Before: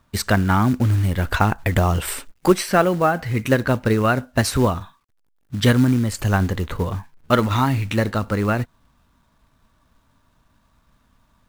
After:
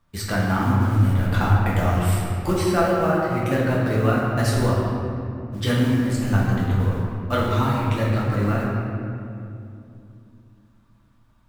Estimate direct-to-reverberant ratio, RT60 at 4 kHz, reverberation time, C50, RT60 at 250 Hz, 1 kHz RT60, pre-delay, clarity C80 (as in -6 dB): -6.0 dB, 1.5 s, 2.7 s, -1.0 dB, 3.8 s, 2.4 s, 6 ms, 0.5 dB